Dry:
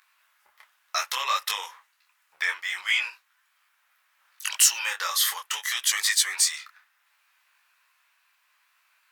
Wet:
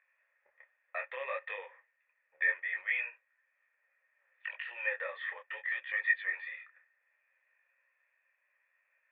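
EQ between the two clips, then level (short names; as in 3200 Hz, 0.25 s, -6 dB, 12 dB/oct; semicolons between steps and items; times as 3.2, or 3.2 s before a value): vocal tract filter e; LPF 3200 Hz 6 dB/oct; +8.0 dB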